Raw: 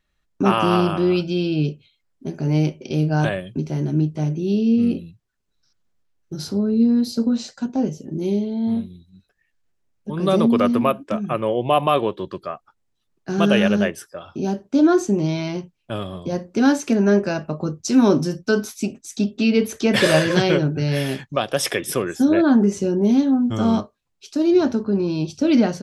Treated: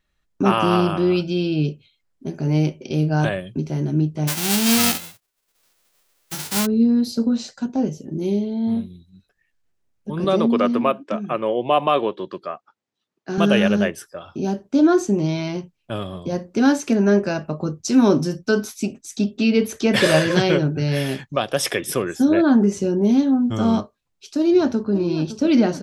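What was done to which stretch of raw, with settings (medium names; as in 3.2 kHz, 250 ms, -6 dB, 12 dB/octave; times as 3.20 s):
4.27–6.65 s: formants flattened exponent 0.1
10.24–13.38 s: band-pass 200–6200 Hz
24.38–24.91 s: echo throw 560 ms, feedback 65%, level -13 dB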